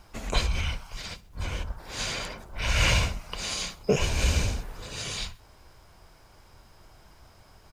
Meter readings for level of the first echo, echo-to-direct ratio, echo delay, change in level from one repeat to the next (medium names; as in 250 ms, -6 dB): -22.5 dB, -21.5 dB, 65 ms, -6.0 dB